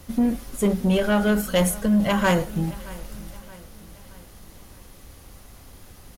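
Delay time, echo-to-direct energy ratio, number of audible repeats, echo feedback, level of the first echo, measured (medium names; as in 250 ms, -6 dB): 623 ms, -19.5 dB, 3, 48%, -20.5 dB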